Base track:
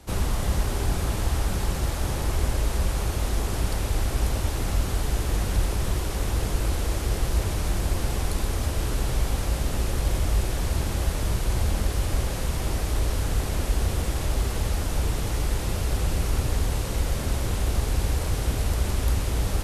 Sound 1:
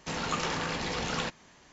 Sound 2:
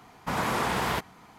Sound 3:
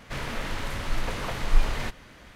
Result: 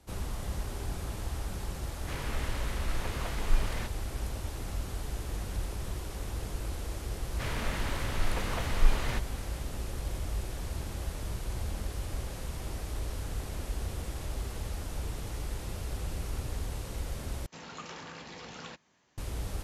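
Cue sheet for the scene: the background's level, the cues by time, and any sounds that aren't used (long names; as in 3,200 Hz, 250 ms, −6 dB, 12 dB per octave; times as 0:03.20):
base track −11 dB
0:01.97: mix in 3 −6.5 dB
0:07.29: mix in 3 −3 dB
0:17.46: overwrite with 1 −12.5 dB + high-pass filter 67 Hz
not used: 2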